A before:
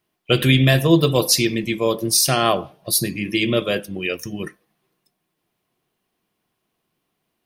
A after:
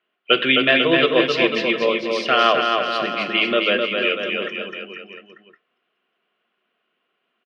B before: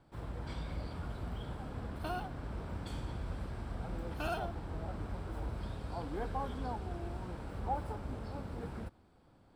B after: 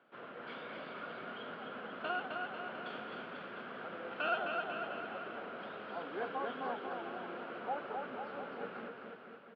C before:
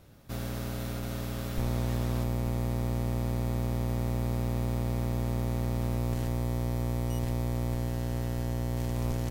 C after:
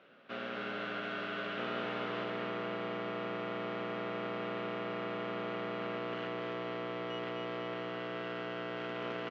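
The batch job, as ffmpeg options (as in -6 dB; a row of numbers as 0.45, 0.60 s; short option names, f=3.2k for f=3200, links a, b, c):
-af "highpass=f=260:w=0.5412,highpass=f=260:w=1.3066,equalizer=f=310:t=q:w=4:g=-10,equalizer=f=880:t=q:w=4:g=-8,equalizer=f=1.4k:t=q:w=4:g=7,equalizer=f=2.9k:t=q:w=4:g=6,lowpass=f=3.1k:w=0.5412,lowpass=f=3.1k:w=1.3066,aecho=1:1:260|494|704.6|894.1|1065:0.631|0.398|0.251|0.158|0.1,volume=2dB"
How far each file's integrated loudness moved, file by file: +0.5, 0.0, -6.5 LU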